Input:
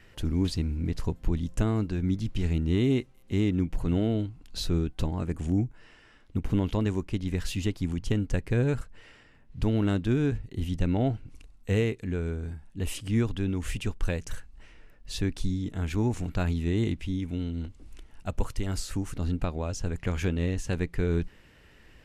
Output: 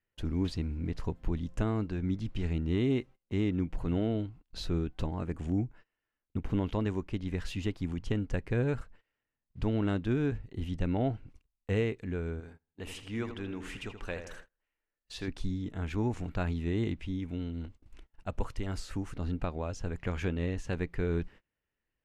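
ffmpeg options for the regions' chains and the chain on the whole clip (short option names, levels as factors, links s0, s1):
-filter_complex "[0:a]asettb=1/sr,asplit=3[s0][s1][s2];[s0]atrim=end=12.404[s3];[s1]atrim=start=12.4:end=15.28,asetpts=PTS-STARTPTS,afade=t=in:d=0.004:c=qsin,afade=t=out:st=2.876:d=0.004:c=qsin,lowshelf=f=250:g=-11,asplit=2[s4][s5];[s5]adelay=80,lowpass=f=3500:p=1,volume=0.398,asplit=2[s6][s7];[s7]adelay=80,lowpass=f=3500:p=1,volume=0.5,asplit=2[s8][s9];[s9]adelay=80,lowpass=f=3500:p=1,volume=0.5,asplit=2[s10][s11];[s11]adelay=80,lowpass=f=3500:p=1,volume=0.5,asplit=2[s12][s13];[s13]adelay=80,lowpass=f=3500:p=1,volume=0.5,asplit=2[s14][s15];[s15]adelay=80,lowpass=f=3500:p=1,volume=0.5[s16];[s4][s6][s8][s10][s12][s14][s16]amix=inputs=7:normalize=0,atrim=end_sample=127008[s17];[s2]atrim=start=15.276[s18];[s3][s17]acrossfade=d=0.004:c1=hsin:c2=qsin[s19];[s19][s18]acrossfade=d=0.004:c1=qsin:c2=hsin,agate=range=0.0398:threshold=0.00708:ratio=16:detection=peak,lowpass=f=2100:p=1,lowshelf=f=430:g=-5.5"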